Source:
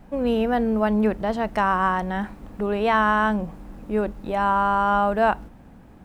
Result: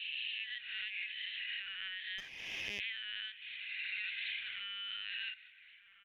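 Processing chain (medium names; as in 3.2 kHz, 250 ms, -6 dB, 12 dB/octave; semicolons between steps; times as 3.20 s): reverse spectral sustain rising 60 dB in 1.17 s; steep high-pass 2.2 kHz 48 dB/octave; 3.38–4.29 s: reverb throw, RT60 1.3 s, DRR -12 dB; expander -57 dBFS; compression 6:1, threshold -45 dBFS, peak gain reduction 15.5 dB; echo from a far wall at 240 m, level -10 dB; LPC vocoder at 8 kHz pitch kept; 2.18–2.80 s: sliding maximum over 3 samples; trim +7 dB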